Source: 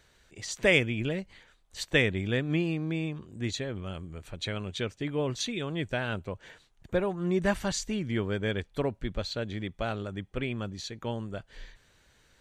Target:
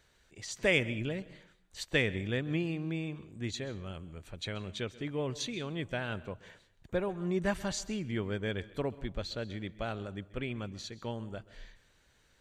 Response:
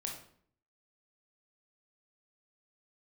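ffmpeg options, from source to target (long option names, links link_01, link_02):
-filter_complex "[0:a]asplit=2[link_01][link_02];[1:a]atrim=start_sample=2205,adelay=132[link_03];[link_02][link_03]afir=irnorm=-1:irlink=0,volume=-17.5dB[link_04];[link_01][link_04]amix=inputs=2:normalize=0,volume=-4.5dB"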